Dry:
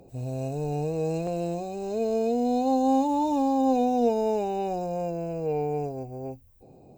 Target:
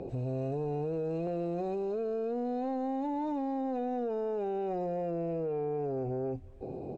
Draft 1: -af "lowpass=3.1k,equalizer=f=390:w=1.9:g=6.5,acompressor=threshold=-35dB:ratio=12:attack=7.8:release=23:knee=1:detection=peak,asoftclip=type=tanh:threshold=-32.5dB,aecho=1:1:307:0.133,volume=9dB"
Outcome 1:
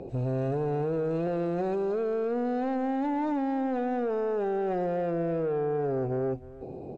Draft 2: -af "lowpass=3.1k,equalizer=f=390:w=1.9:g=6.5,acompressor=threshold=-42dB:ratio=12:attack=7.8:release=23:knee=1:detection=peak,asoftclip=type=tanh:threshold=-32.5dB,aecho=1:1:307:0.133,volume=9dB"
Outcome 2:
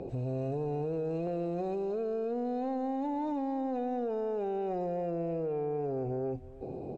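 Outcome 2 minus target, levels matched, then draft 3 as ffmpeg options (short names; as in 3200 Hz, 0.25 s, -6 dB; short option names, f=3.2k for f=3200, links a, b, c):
echo-to-direct +9.5 dB
-af "lowpass=3.1k,equalizer=f=390:w=1.9:g=6.5,acompressor=threshold=-42dB:ratio=12:attack=7.8:release=23:knee=1:detection=peak,asoftclip=type=tanh:threshold=-32.5dB,aecho=1:1:307:0.0447,volume=9dB"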